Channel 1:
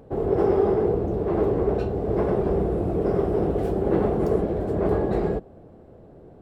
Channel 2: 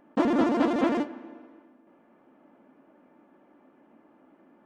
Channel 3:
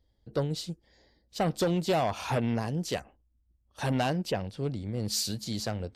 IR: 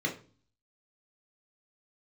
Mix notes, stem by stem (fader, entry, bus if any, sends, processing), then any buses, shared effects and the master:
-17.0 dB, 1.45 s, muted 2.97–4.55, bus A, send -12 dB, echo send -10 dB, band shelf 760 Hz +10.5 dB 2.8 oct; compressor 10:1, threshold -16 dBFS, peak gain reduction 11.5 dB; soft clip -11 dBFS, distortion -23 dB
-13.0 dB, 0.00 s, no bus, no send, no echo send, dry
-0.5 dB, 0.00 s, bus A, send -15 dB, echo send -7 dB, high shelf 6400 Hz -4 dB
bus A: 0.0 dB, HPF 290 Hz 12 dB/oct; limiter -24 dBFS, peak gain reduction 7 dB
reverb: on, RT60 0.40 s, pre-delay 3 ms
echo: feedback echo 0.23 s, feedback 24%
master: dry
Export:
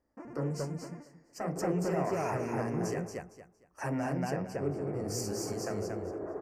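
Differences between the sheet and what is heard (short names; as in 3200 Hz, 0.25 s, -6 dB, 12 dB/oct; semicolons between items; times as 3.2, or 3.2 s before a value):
stem 2 -13.0 dB -> -22.5 dB; master: extra Chebyshev band-stop 2200–5700 Hz, order 2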